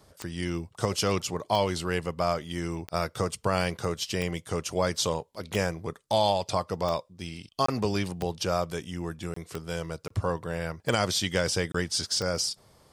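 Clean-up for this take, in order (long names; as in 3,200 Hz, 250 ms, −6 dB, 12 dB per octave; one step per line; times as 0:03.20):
click removal
repair the gap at 0:07.66/0:09.34/0:10.08/0:11.72, 24 ms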